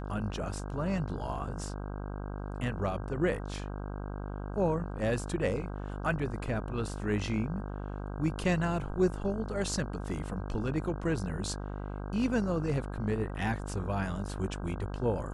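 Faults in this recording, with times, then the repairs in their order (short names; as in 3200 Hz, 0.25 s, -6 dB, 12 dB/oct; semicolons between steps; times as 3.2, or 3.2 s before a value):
buzz 50 Hz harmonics 32 -38 dBFS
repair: de-hum 50 Hz, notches 32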